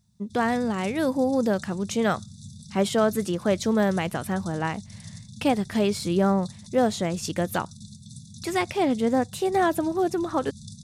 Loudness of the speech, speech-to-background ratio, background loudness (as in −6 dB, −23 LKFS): −25.5 LKFS, 17.5 dB, −43.0 LKFS